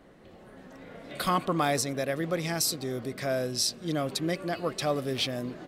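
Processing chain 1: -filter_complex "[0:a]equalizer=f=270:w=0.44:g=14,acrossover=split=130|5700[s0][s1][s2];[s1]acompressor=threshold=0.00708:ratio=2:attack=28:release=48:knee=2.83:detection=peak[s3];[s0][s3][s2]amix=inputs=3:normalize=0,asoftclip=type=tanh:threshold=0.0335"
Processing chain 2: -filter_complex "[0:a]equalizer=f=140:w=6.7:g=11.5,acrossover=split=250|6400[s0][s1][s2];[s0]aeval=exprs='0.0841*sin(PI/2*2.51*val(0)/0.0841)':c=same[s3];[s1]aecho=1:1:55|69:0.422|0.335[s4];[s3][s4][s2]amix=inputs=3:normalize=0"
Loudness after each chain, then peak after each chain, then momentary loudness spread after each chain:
-35.0 LUFS, -24.5 LUFS; -29.5 dBFS, -11.0 dBFS; 8 LU, 17 LU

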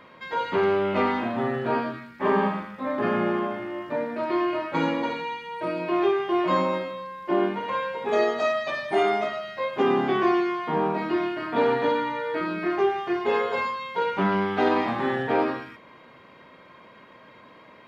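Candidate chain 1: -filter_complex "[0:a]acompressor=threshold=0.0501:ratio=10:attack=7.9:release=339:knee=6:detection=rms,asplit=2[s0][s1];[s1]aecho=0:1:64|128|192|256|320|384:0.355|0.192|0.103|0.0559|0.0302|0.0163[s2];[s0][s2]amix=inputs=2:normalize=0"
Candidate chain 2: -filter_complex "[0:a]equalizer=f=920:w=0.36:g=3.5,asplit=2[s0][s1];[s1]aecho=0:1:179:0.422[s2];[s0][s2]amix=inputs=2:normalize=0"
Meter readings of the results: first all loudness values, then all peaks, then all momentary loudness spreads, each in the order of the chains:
-31.5 LUFS, -22.0 LUFS; -18.0 dBFS, -7.0 dBFS; 15 LU, 8 LU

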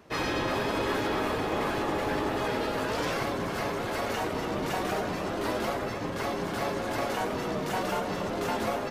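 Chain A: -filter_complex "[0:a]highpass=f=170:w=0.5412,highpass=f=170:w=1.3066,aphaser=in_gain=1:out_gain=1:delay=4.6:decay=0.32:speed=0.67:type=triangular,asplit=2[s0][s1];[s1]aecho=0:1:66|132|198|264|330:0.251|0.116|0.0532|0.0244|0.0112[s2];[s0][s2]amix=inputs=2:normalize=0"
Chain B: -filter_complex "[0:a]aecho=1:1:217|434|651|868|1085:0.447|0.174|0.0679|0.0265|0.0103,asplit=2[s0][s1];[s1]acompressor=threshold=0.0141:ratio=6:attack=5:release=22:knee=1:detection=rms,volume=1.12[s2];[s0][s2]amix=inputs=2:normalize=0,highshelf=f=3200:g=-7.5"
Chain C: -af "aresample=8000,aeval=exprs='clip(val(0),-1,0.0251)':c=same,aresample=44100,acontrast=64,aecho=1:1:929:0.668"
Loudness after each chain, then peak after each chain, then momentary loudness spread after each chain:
-30.0 LUFS, -27.0 LUFS, -24.0 LUFS; -16.5 dBFS, -14.0 dBFS, -9.5 dBFS; 3 LU, 2 LU, 2 LU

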